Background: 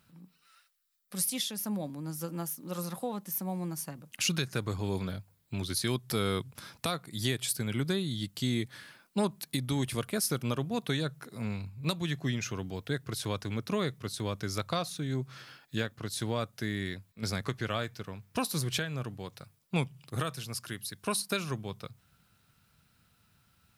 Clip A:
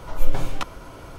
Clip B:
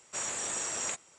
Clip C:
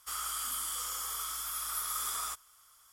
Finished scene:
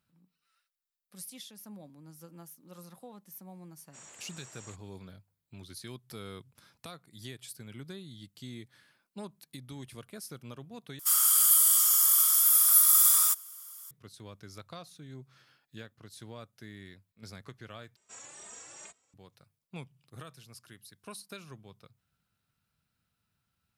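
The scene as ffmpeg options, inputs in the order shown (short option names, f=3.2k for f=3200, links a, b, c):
-filter_complex "[2:a]asplit=2[a][b];[0:a]volume=-13.5dB[c];[3:a]aemphasis=mode=production:type=riaa[d];[b]asplit=2[e][f];[f]adelay=2.9,afreqshift=2.3[g];[e][g]amix=inputs=2:normalize=1[h];[c]asplit=3[i][j][k];[i]atrim=end=10.994[l];[d]atrim=end=2.92,asetpts=PTS-STARTPTS,volume=-0.5dB[m];[j]atrim=start=13.906:end=17.964[n];[h]atrim=end=1.18,asetpts=PTS-STARTPTS,volume=-11dB[o];[k]atrim=start=19.136[p];[a]atrim=end=1.18,asetpts=PTS-STARTPTS,volume=-17dB,afade=t=in:d=0.004:c=hsin,afade=t=out:st=1.176:d=0.004:c=hsin,adelay=3800[q];[l][m]acrossfade=d=0.004:c1=hsin:c2=hsin[r];[r][n]acrossfade=d=0.004:c1=hsin:c2=hsin[s];[s][o]acrossfade=d=0.004:c1=hsin:c2=hsin[t];[t][p]acrossfade=d=0.004:c1=hsin:c2=hsin[u];[u][q]amix=inputs=2:normalize=0"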